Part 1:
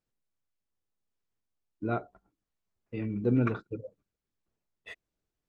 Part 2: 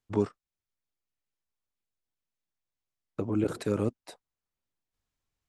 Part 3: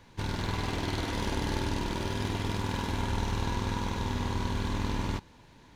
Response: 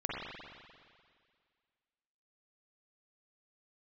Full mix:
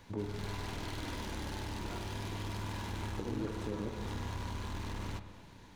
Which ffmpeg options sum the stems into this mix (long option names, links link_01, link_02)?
-filter_complex "[0:a]volume=-18dB[link_01];[1:a]tiltshelf=frequency=970:gain=5.5,volume=-3.5dB,asplit=2[link_02][link_03];[link_03]volume=-19.5dB[link_04];[2:a]asoftclip=type=hard:threshold=-30.5dB,volume=0dB,asplit=2[link_05][link_06];[link_06]volume=-18.5dB[link_07];[link_02][link_05]amix=inputs=2:normalize=0,highshelf=frequency=7500:gain=5.5,acompressor=threshold=-41dB:ratio=6,volume=0dB[link_08];[3:a]atrim=start_sample=2205[link_09];[link_04][link_07]amix=inputs=2:normalize=0[link_10];[link_10][link_09]afir=irnorm=-1:irlink=0[link_11];[link_01][link_08][link_11]amix=inputs=3:normalize=0,aeval=exprs='0.0473*(cos(1*acos(clip(val(0)/0.0473,-1,1)))-cos(1*PI/2))+0.00168*(cos(7*acos(clip(val(0)/0.0473,-1,1)))-cos(7*PI/2))':channel_layout=same"